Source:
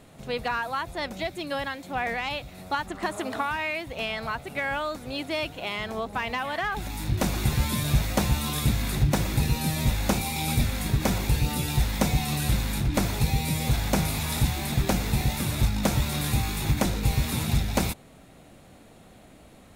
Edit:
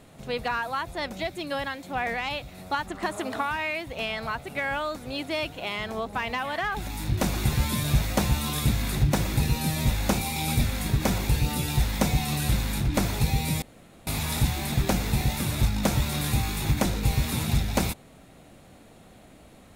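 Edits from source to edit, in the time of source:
0:13.62–0:14.07: fill with room tone

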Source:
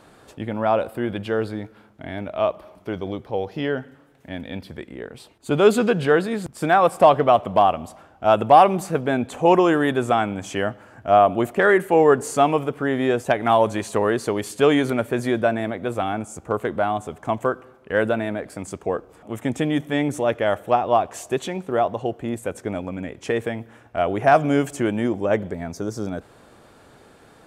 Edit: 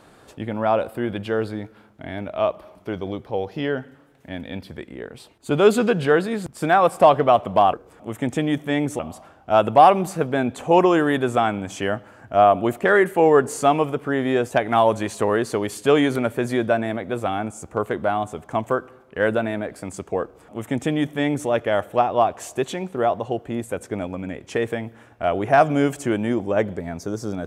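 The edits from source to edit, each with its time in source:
0:18.96–0:20.22: duplicate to 0:07.73

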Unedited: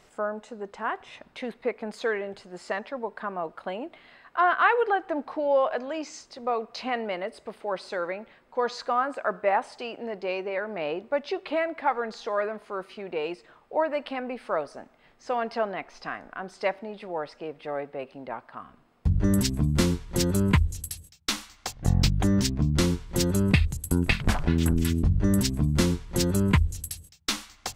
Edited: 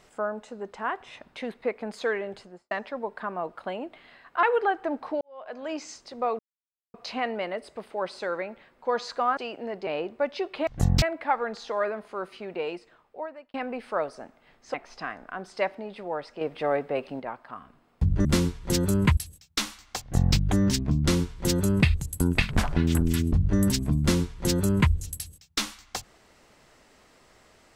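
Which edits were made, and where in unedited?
0:02.38–0:02.71: fade out and dull
0:04.43–0:04.68: remove
0:05.46–0:05.96: fade in quadratic
0:06.64: splice in silence 0.55 s
0:09.07–0:09.77: remove
0:10.27–0:10.79: remove
0:13.09–0:14.11: fade out
0:15.31–0:15.78: remove
0:17.45–0:18.24: clip gain +6.5 dB
0:19.29–0:19.71: remove
0:20.63–0:20.88: remove
0:21.72–0:22.07: duplicate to 0:11.59

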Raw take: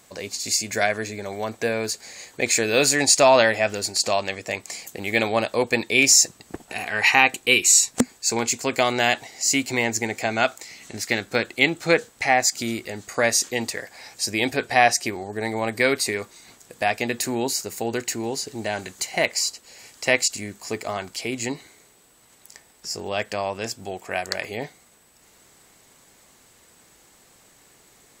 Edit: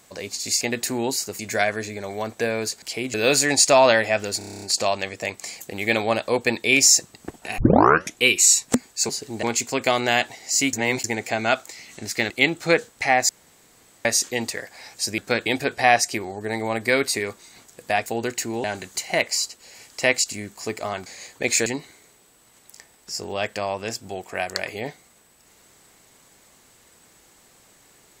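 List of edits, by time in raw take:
0:02.04–0:02.64: swap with 0:21.10–0:21.42
0:03.88: stutter 0.03 s, 9 plays
0:06.84: tape start 0.61 s
0:09.65–0:09.96: reverse
0:11.22–0:11.50: move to 0:14.38
0:12.49–0:13.25: fill with room tone
0:16.98–0:17.76: move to 0:00.61
0:18.34–0:18.68: move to 0:08.35

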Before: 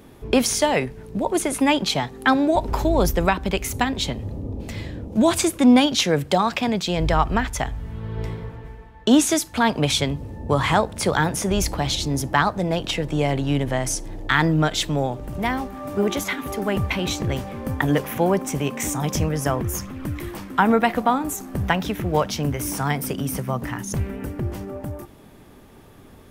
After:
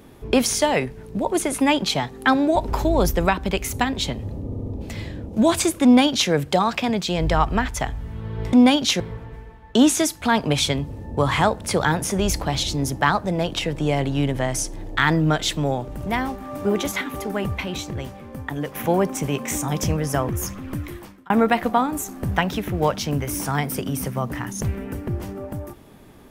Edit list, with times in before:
0:04.45: stutter 0.07 s, 4 plays
0:05.63–0:06.10: duplicate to 0:08.32
0:16.35–0:18.07: fade out quadratic, to −8 dB
0:20.06–0:20.62: fade out

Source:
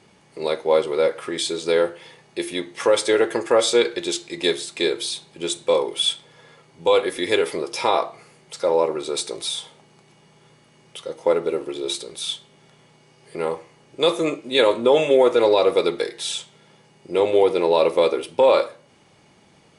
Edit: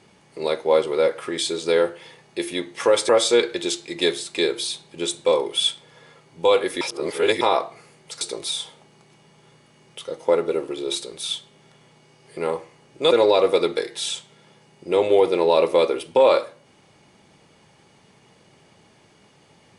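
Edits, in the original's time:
0:03.09–0:03.51: remove
0:07.23–0:07.83: reverse
0:08.63–0:09.19: remove
0:14.09–0:15.34: remove

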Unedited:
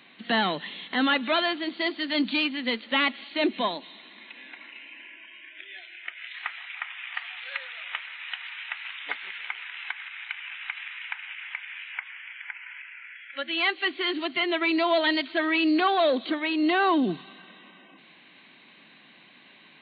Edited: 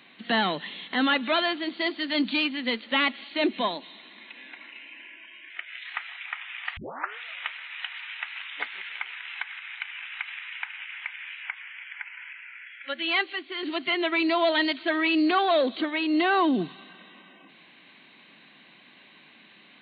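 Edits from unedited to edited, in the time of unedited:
0:05.50–0:05.99: remove
0:07.26: tape start 0.43 s
0:13.82–0:14.12: clip gain −6.5 dB

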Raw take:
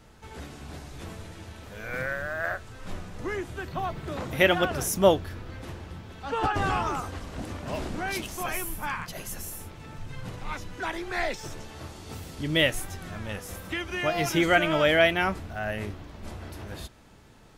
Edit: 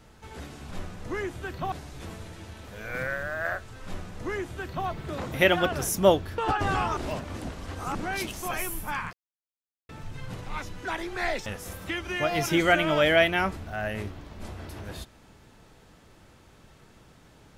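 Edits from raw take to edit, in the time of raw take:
0:02.85–0:03.86: duplicate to 0:00.71
0:05.37–0:06.33: remove
0:06.92–0:07.90: reverse
0:09.08–0:09.84: silence
0:11.41–0:13.29: remove

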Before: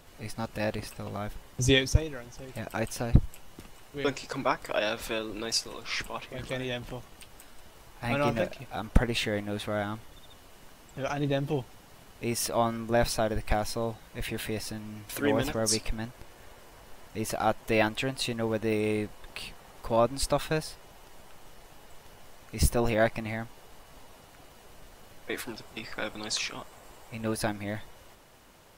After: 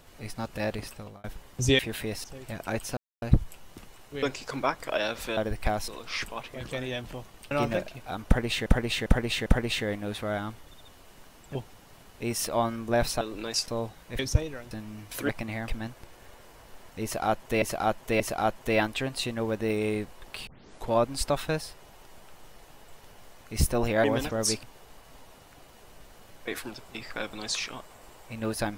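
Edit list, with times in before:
0:00.92–0:01.24: fade out
0:01.79–0:02.31: swap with 0:14.24–0:14.69
0:03.04: splice in silence 0.25 s
0:05.19–0:05.66: swap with 0:13.22–0:13.73
0:07.29–0:08.16: remove
0:08.91–0:09.31: repeat, 4 plays
0:11.00–0:11.56: remove
0:15.27–0:15.86: swap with 0:23.06–0:23.45
0:17.22–0:17.80: repeat, 3 plays
0:19.49: tape start 0.43 s

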